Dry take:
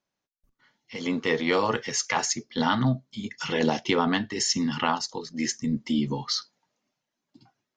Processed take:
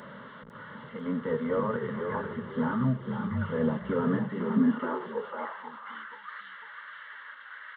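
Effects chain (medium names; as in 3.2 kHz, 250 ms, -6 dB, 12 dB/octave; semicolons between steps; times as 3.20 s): one-bit delta coder 16 kbps, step -33.5 dBFS; static phaser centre 500 Hz, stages 8; frequency-shifting echo 499 ms, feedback 32%, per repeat -33 Hz, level -5.5 dB; high-pass sweep 100 Hz -> 1.7 kHz, 3.98–6.19 s; trim -2 dB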